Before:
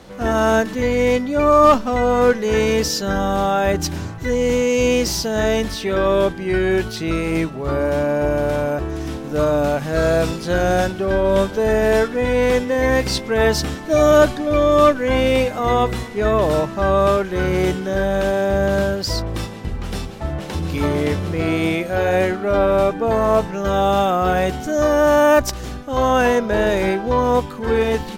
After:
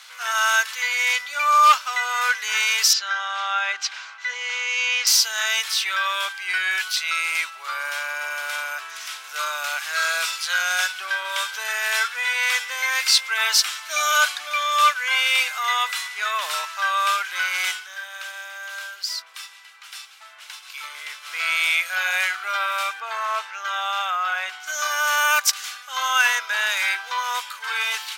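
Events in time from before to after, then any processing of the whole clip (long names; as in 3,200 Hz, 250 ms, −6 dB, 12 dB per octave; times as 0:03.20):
0:02.93–0:05.07: high-frequency loss of the air 150 metres
0:17.74–0:21.34: duck −9.5 dB, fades 0.13 s
0:22.99–0:24.66: low-pass filter 3,200 Hz → 1,400 Hz 6 dB per octave
whole clip: high-pass filter 1,400 Hz 24 dB per octave; notch filter 1,800 Hz, Q 10; level +7.5 dB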